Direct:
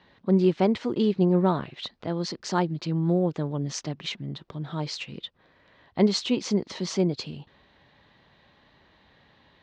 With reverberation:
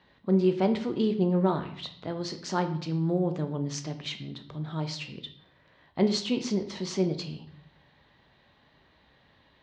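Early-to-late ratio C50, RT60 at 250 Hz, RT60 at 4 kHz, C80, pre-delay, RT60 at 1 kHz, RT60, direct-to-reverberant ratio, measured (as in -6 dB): 11.5 dB, 0.85 s, 0.55 s, 14.5 dB, 14 ms, 0.55 s, 0.60 s, 7.0 dB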